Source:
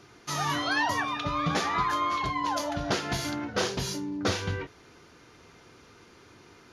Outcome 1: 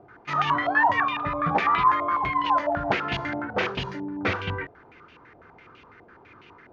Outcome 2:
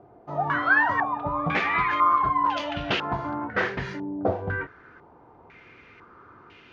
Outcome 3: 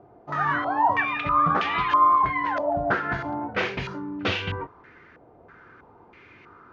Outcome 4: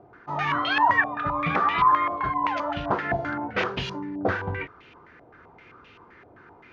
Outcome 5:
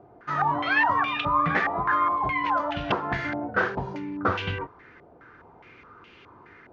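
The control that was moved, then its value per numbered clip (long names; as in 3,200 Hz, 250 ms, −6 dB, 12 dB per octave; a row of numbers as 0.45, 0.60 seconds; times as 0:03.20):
low-pass on a step sequencer, speed: 12, 2, 3.1, 7.7, 4.8 Hertz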